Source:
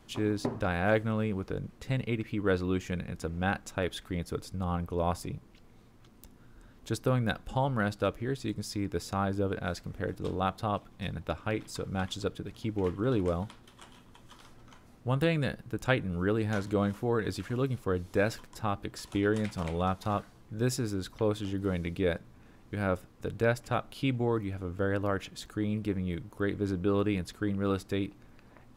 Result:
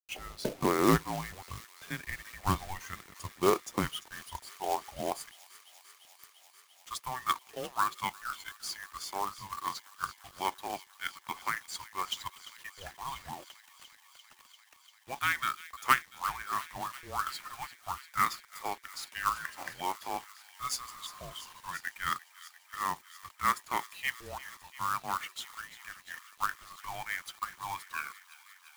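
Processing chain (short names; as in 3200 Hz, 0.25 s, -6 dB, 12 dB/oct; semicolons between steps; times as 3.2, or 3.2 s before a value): tape stop at the end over 0.99 s; spectral noise reduction 10 dB; spectral repair 20.9–21.58, 1100–3100 Hz; high-pass sweep 780 Hz -> 1700 Hz, 3.91–5.56; companded quantiser 4-bit; frequency shift -380 Hz; on a send: thin delay 0.345 s, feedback 84%, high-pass 2300 Hz, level -14 dB; on the sum: gain +1.5 dB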